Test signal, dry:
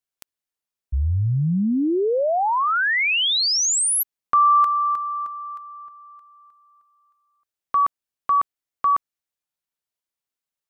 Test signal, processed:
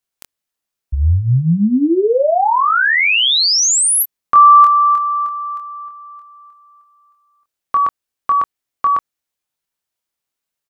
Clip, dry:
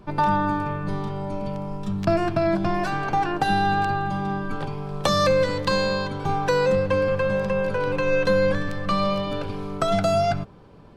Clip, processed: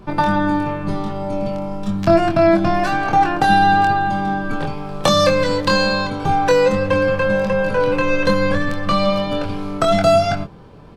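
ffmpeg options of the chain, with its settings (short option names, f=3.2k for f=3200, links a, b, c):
-filter_complex "[0:a]asplit=2[a][b];[b]adelay=24,volume=-5dB[c];[a][c]amix=inputs=2:normalize=0,volume=5.5dB"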